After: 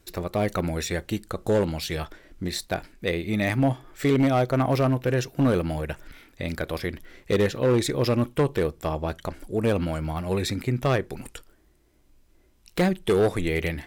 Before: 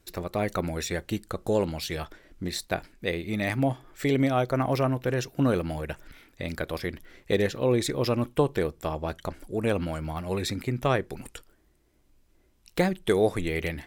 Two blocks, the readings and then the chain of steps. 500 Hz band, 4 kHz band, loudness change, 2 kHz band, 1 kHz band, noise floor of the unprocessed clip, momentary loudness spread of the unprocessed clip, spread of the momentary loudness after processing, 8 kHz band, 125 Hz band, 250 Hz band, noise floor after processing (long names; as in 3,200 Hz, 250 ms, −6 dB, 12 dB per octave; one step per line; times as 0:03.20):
+2.5 dB, +2.0 dB, +2.5 dB, +1.5 dB, +1.5 dB, −64 dBFS, 12 LU, 11 LU, +1.5 dB, +4.0 dB, +3.0 dB, −60 dBFS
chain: harmonic and percussive parts rebalanced percussive −3 dB
hard clipping −20 dBFS, distortion −16 dB
level +4.5 dB